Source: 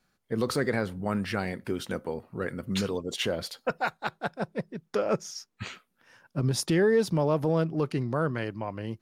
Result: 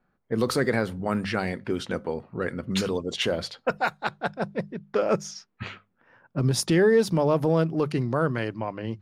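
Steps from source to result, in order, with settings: notches 50/100/150/200 Hz; low-pass opened by the level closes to 1400 Hz, open at -25 dBFS; gain +3.5 dB

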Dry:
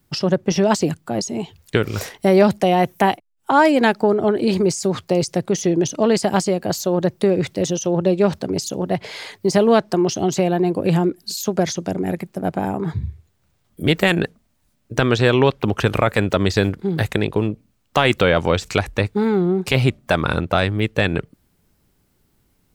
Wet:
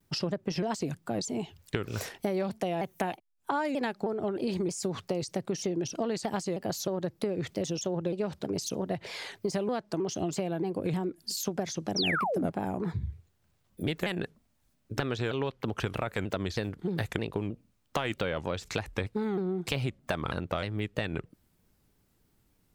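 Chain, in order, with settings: compressor 6:1, threshold -21 dBFS, peak gain reduction 12.5 dB; painted sound fall, 11.96–12.46, 220–5800 Hz -23 dBFS; shaped vibrato saw down 3.2 Hz, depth 160 cents; gain -6.5 dB

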